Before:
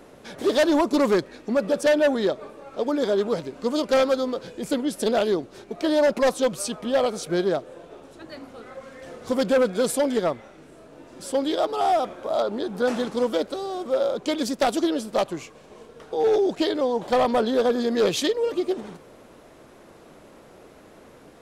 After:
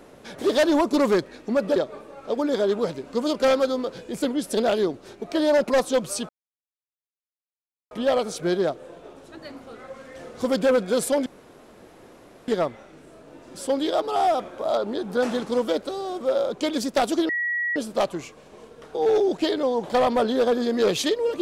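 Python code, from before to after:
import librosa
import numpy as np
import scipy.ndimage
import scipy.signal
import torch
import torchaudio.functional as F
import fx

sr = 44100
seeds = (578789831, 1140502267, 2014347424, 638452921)

y = fx.edit(x, sr, fx.cut(start_s=1.76, length_s=0.49),
    fx.insert_silence(at_s=6.78, length_s=1.62),
    fx.insert_room_tone(at_s=10.13, length_s=1.22),
    fx.insert_tone(at_s=14.94, length_s=0.47, hz=1920.0, db=-22.5), tone=tone)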